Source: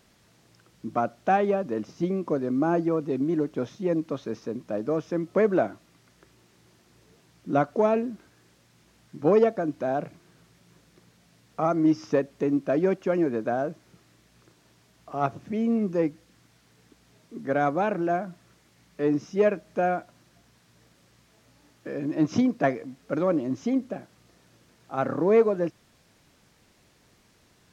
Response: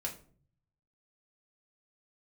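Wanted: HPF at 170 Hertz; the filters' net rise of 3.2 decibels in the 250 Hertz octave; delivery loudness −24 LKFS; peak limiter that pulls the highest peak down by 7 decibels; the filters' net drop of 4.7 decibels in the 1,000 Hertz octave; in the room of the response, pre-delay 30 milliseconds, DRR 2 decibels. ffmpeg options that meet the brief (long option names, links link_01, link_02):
-filter_complex "[0:a]highpass=170,equalizer=frequency=250:width_type=o:gain=5.5,equalizer=frequency=1000:width_type=o:gain=-8.5,alimiter=limit=-16dB:level=0:latency=1,asplit=2[link_01][link_02];[1:a]atrim=start_sample=2205,adelay=30[link_03];[link_02][link_03]afir=irnorm=-1:irlink=0,volume=-3dB[link_04];[link_01][link_04]amix=inputs=2:normalize=0,volume=1dB"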